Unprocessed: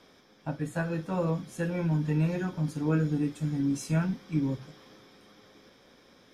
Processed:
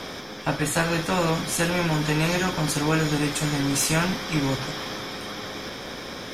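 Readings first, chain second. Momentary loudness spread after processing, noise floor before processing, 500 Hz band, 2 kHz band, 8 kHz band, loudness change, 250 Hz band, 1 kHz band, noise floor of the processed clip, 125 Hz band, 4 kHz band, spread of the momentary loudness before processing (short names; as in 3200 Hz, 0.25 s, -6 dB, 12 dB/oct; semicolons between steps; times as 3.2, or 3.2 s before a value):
11 LU, -59 dBFS, +8.0 dB, +14.5 dB, +19.5 dB, +5.5 dB, +3.5 dB, +13.5 dB, -37 dBFS, +2.5 dB, +22.5 dB, 8 LU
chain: spectral compressor 2:1; gain +7.5 dB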